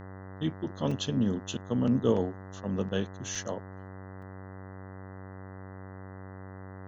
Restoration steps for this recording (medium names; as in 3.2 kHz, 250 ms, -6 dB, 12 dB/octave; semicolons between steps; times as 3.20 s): de-hum 95.1 Hz, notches 21; interpolate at 0.91/3.35/4.22 s, 4.5 ms